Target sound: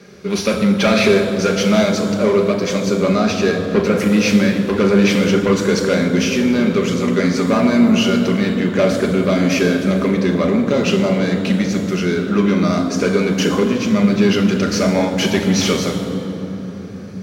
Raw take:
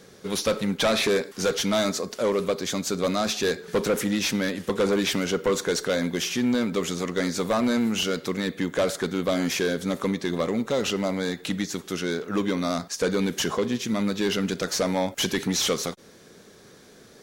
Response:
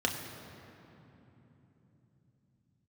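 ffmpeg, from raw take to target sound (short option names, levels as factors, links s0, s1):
-filter_complex "[0:a]asettb=1/sr,asplit=3[s0][s1][s2];[s0]atrim=end=2.854[s3];[s1]atrim=start=2.85:end=4,asetpts=PTS-STARTPTS,afade=t=in:d=0.004:c=qsin,afade=t=out:st=1.146:d=0.004:c=qsin,highshelf=f=5300:g=-6[s4];[s2]atrim=start=3.996[s5];[s3][s4]acrossfade=d=0.004:c1=hsin:c2=qsin[s6];[s6][s5]acrossfade=d=0.004:c1=qsin:c2=hsin[s7];[1:a]atrim=start_sample=2205,asetrate=35280,aresample=44100[s8];[s7][s8]afir=irnorm=-1:irlink=0,volume=0.794"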